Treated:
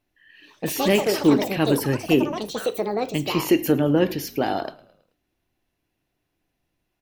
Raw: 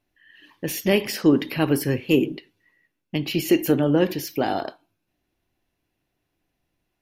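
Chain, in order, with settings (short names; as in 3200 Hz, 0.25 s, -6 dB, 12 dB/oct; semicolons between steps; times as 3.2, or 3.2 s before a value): frequency-shifting echo 0.108 s, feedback 52%, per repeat -37 Hz, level -22.5 dB; echoes that change speed 0.179 s, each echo +6 st, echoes 3, each echo -6 dB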